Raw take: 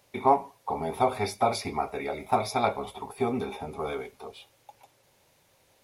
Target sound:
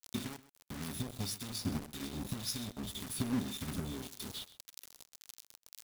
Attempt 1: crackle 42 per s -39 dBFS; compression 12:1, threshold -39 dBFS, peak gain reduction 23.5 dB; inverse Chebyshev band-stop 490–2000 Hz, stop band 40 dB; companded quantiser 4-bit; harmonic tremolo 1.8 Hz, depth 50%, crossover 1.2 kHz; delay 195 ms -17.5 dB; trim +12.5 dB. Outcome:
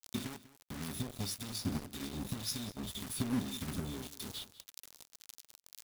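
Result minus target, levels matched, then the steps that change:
echo 66 ms late
change: delay 129 ms -17.5 dB

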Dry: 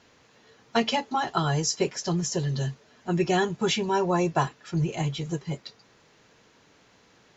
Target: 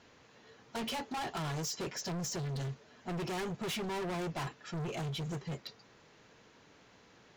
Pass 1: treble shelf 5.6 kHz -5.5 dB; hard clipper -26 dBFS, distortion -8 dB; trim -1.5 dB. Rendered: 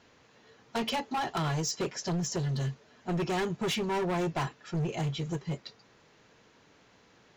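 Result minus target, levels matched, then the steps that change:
hard clipper: distortion -4 dB
change: hard clipper -34 dBFS, distortion -4 dB

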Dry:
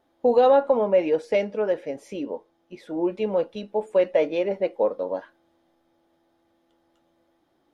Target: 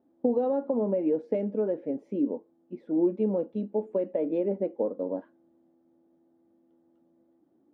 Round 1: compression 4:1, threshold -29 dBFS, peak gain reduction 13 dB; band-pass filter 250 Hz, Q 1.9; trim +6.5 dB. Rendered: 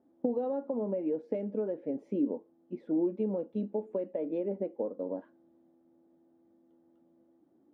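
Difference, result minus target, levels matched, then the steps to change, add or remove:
compression: peak gain reduction +6 dB
change: compression 4:1, threshold -21 dBFS, peak gain reduction 7 dB

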